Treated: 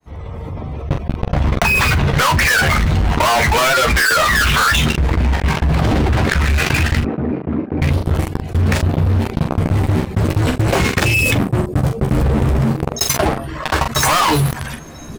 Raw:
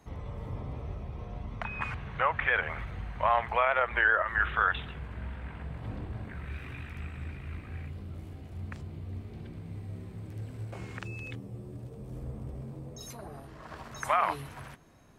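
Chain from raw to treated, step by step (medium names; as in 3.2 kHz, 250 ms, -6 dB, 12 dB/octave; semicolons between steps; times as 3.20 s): fade-in on the opening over 2.30 s; reverb removal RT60 1.5 s; gate -44 dBFS, range -14 dB; waveshaping leveller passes 5; saturation -29 dBFS, distortion -7 dB; 7.00–7.82 s: ladder band-pass 330 Hz, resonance 20%; early reflections 13 ms -6.5 dB, 44 ms -14.5 dB; loudness maximiser +28.5 dB; level flattener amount 70%; trim -10 dB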